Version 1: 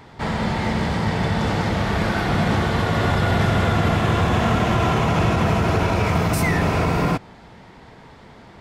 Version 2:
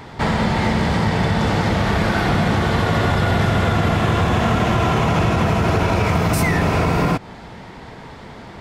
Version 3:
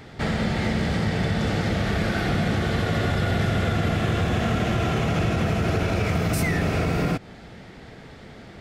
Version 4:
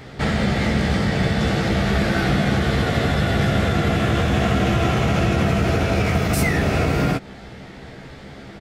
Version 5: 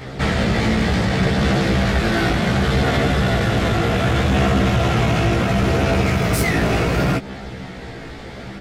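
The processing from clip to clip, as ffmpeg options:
-af "acompressor=threshold=-23dB:ratio=3,volume=7.5dB"
-af "equalizer=f=970:w=3.5:g=-12,volume=-5dB"
-filter_complex "[0:a]asplit=2[a][b];[b]adelay=15,volume=-5.5dB[c];[a][c]amix=inputs=2:normalize=0,volume=3.5dB"
-af "asoftclip=type=tanh:threshold=-19dB,flanger=delay=15:depth=2.8:speed=0.68,volume=8.5dB"

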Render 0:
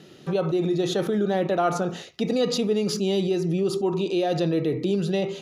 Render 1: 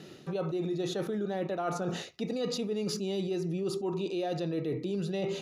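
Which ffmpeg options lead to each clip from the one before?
-af "bandreject=f=3.2k:w=17,areverse,acompressor=threshold=-30dB:ratio=6,areverse"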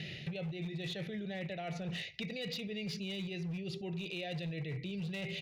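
-af "firequalizer=gain_entry='entry(150,0);entry(270,-18);entry(640,-9);entry(1100,-28);entry(2000,6);entry(7500,-18)':delay=0.05:min_phase=1,volume=35dB,asoftclip=hard,volume=-35dB,acompressor=threshold=-49dB:ratio=6,volume=11dB"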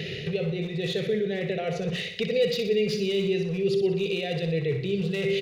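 -filter_complex "[0:a]superequalizer=7b=3.98:9b=0.562,asplit=2[a][b];[b]aecho=0:1:61|122|183|244|305|366|427:0.398|0.219|0.12|0.0662|0.0364|0.02|0.011[c];[a][c]amix=inputs=2:normalize=0,volume=8.5dB"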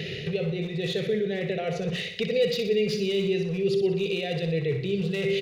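-af anull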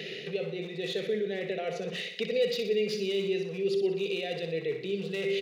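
-af "highpass=f=210:w=0.5412,highpass=f=210:w=1.3066,volume=-3.5dB"

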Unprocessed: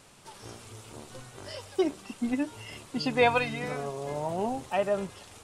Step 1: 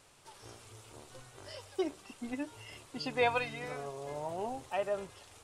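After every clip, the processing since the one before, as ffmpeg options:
-af "equalizer=f=200:w=1.9:g=-8.5,volume=-6dB"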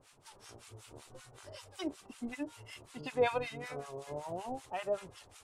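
-filter_complex "[0:a]acrossover=split=940[a][b];[a]aeval=exprs='val(0)*(1-1/2+1/2*cos(2*PI*5.3*n/s))':c=same[c];[b]aeval=exprs='val(0)*(1-1/2-1/2*cos(2*PI*5.3*n/s))':c=same[d];[c][d]amix=inputs=2:normalize=0,volume=3dB"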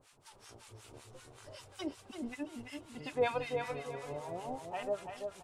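-filter_complex "[0:a]asplit=2[a][b];[b]adelay=337,lowpass=f=3.9k:p=1,volume=-5.5dB,asplit=2[c][d];[d]adelay=337,lowpass=f=3.9k:p=1,volume=0.35,asplit=2[e][f];[f]adelay=337,lowpass=f=3.9k:p=1,volume=0.35,asplit=2[g][h];[h]adelay=337,lowpass=f=3.9k:p=1,volume=0.35[i];[a][c][e][g][i]amix=inputs=5:normalize=0,volume=-1.5dB"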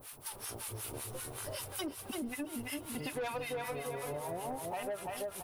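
-af "aexciter=amount=10.4:drive=2.8:freq=10k,asoftclip=type=tanh:threshold=-33dB,acompressor=threshold=-47dB:ratio=6,volume=10.5dB"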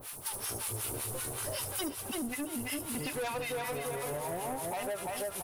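-filter_complex "[0:a]acrossover=split=5800[a][b];[a]asoftclip=type=tanh:threshold=-37dB[c];[b]aecho=1:1:72:0.631[d];[c][d]amix=inputs=2:normalize=0,volume=5.5dB"

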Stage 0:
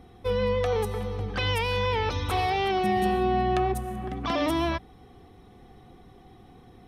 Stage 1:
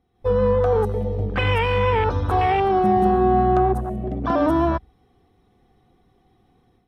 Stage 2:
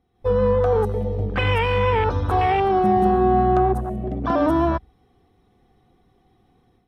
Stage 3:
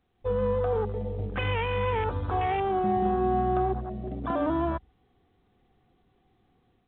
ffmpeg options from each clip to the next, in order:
-af "dynaudnorm=f=130:g=3:m=10dB,afwtdn=0.1,volume=-2.5dB"
-af anull
-af "volume=-8dB" -ar 8000 -c:a pcm_mulaw

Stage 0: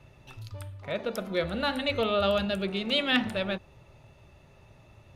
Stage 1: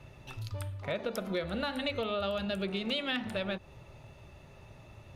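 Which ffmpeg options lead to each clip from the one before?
-af "acompressor=threshold=-33dB:ratio=6,volume=2.5dB"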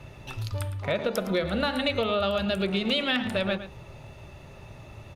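-filter_complex "[0:a]asplit=2[a][b];[b]adelay=110.8,volume=-12dB,highshelf=f=4k:g=-2.49[c];[a][c]amix=inputs=2:normalize=0,volume=7dB"

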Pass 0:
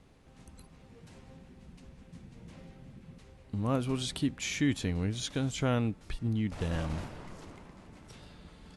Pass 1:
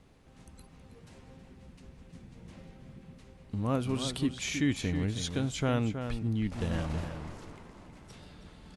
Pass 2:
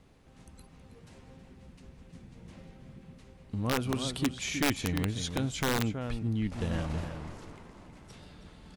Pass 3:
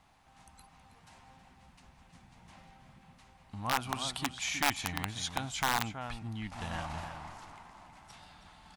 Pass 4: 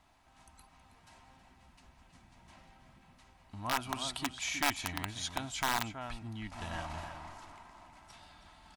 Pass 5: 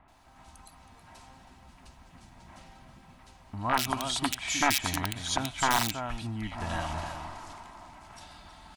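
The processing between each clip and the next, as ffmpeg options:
-filter_complex "[0:a]asplit=2[a][b];[b]adelay=320.7,volume=-8dB,highshelf=f=4k:g=-7.22[c];[a][c]amix=inputs=2:normalize=0"
-af "aeval=exprs='(mod(10*val(0)+1,2)-1)/10':c=same"
-af "lowshelf=f=610:t=q:w=3:g=-8.5"
-af "aecho=1:1:3.1:0.36,volume=-2dB"
-filter_complex "[0:a]acrossover=split=2400[a][b];[b]adelay=80[c];[a][c]amix=inputs=2:normalize=0,volume=7.5dB"

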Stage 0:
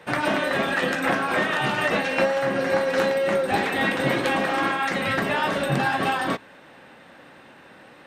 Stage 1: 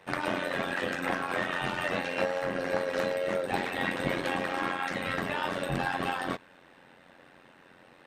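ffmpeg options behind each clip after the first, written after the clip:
-af "tremolo=f=89:d=0.788,volume=-4.5dB"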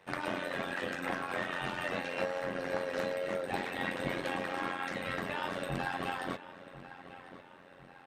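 -filter_complex "[0:a]asplit=2[a][b];[b]adelay=1046,lowpass=f=3.8k:p=1,volume=-14.5dB,asplit=2[c][d];[d]adelay=1046,lowpass=f=3.8k:p=1,volume=0.5,asplit=2[e][f];[f]adelay=1046,lowpass=f=3.8k:p=1,volume=0.5,asplit=2[g][h];[h]adelay=1046,lowpass=f=3.8k:p=1,volume=0.5,asplit=2[i][j];[j]adelay=1046,lowpass=f=3.8k:p=1,volume=0.5[k];[a][c][e][g][i][k]amix=inputs=6:normalize=0,volume=-5dB"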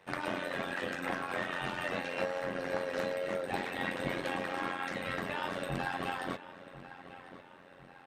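-af anull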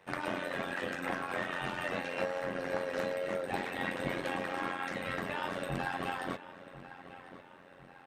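-af "equalizer=f=4.1k:w=1.5:g=-2"

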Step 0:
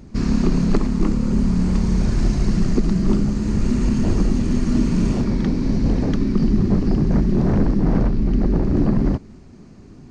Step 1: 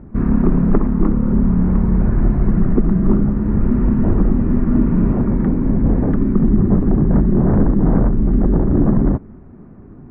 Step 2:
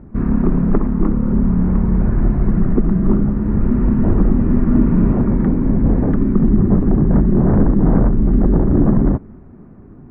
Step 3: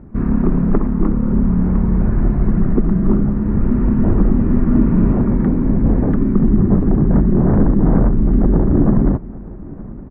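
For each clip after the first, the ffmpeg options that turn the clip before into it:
-af "lowpass=f=1.6k:w=0.5412,lowpass=f=1.6k:w=1.3066,volume=3.5dB"
-af "dynaudnorm=f=210:g=11:m=11.5dB,volume=-1dB"
-af "aecho=1:1:917|1834|2751|3668:0.0944|0.05|0.0265|0.0141"

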